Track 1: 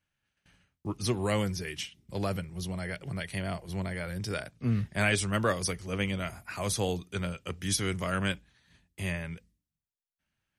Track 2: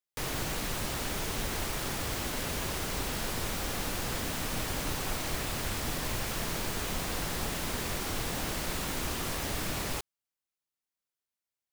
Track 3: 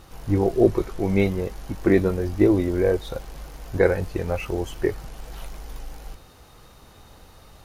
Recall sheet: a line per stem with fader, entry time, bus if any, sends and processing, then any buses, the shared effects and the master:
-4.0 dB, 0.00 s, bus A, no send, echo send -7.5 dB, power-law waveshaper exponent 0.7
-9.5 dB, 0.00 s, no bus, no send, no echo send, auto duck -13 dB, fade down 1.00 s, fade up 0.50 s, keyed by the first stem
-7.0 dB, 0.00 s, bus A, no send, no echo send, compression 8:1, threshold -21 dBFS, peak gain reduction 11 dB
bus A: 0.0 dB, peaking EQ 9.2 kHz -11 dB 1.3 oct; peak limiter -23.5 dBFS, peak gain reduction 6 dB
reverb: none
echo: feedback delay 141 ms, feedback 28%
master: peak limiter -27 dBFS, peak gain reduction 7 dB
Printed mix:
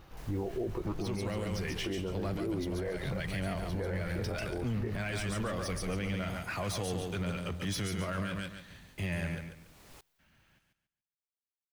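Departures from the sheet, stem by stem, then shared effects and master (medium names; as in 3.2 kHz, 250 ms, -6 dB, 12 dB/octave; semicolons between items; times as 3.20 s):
stem 2 -9.5 dB -> -17.0 dB; stem 3: missing compression 8:1, threshold -21 dBFS, peak gain reduction 11 dB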